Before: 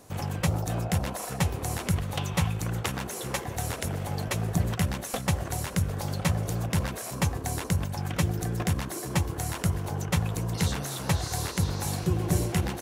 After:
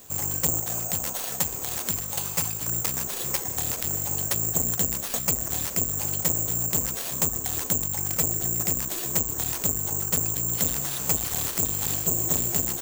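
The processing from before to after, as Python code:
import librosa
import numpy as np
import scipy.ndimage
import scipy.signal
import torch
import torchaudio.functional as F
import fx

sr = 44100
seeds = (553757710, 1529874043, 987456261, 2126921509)

y = fx.low_shelf(x, sr, hz=210.0, db=-8.5, at=(0.6, 2.68))
y = (np.kron(y[::6], np.eye(6)[0]) * 6)[:len(y)]
y = fx.transformer_sat(y, sr, knee_hz=3300.0)
y = y * librosa.db_to_amplitude(-2.5)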